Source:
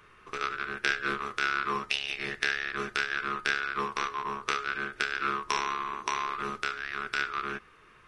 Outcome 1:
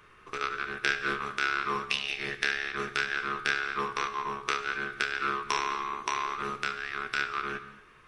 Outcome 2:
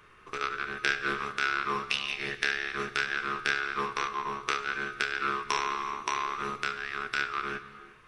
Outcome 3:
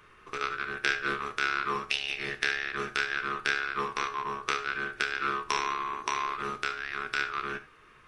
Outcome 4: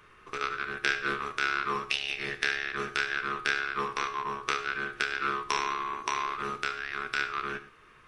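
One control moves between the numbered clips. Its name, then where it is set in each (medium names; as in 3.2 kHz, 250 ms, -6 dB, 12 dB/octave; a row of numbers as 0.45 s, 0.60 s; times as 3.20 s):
gated-style reverb, gate: 270 ms, 410 ms, 100 ms, 140 ms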